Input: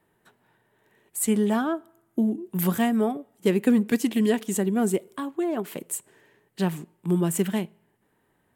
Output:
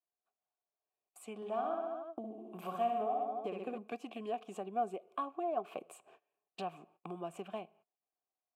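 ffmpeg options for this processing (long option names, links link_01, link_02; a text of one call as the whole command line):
ffmpeg -i in.wav -filter_complex "[0:a]dynaudnorm=framelen=610:gausssize=7:maxgain=13dB,agate=range=-28dB:threshold=-43dB:ratio=16:detection=peak,asettb=1/sr,asplit=3[link_01][link_02][link_03];[link_01]atrim=end=1.364[link_04];[link_02]atrim=start=1.36:end=3.78,asetpts=PTS-STARTPTS,afade=type=in:duration=0.004:curve=qsin,afade=type=out:start_time=2.416:duration=0.004:curve=qsin,aecho=1:1:60|126|198.6|278.5|366.3:0.631|0.398|0.251|0.158|0.1,atrim=end_sample=106722[link_05];[link_03]atrim=start=3.776[link_06];[link_04][link_05]acrossfade=duration=0.004:curve1=hsin:curve2=qsin[link_07];[link_07][link_06]acrossfade=duration=0.004:curve1=qsin:curve2=hsin,acompressor=threshold=-33dB:ratio=3,asplit=3[link_08][link_09][link_10];[link_08]bandpass=frequency=730:width_type=q:width=8,volume=0dB[link_11];[link_09]bandpass=frequency=1090:width_type=q:width=8,volume=-6dB[link_12];[link_10]bandpass=frequency=2440:width_type=q:width=8,volume=-9dB[link_13];[link_11][link_12][link_13]amix=inputs=3:normalize=0,adynamicequalizer=threshold=0.00112:dfrequency=1600:dqfactor=0.7:tfrequency=1600:tqfactor=0.7:attack=5:release=100:ratio=0.375:range=2.5:mode=cutabove:tftype=highshelf,volume=7.5dB" out.wav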